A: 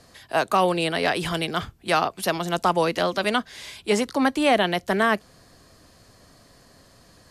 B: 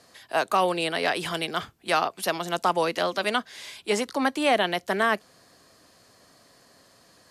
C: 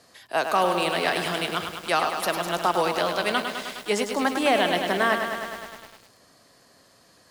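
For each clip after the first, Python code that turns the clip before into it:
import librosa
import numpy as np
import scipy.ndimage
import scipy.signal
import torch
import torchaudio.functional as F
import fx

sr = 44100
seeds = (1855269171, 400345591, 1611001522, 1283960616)

y1 = fx.highpass(x, sr, hz=310.0, slope=6)
y1 = y1 * librosa.db_to_amplitude(-1.5)
y2 = fx.echo_crushed(y1, sr, ms=103, feedback_pct=80, bits=7, wet_db=-6.5)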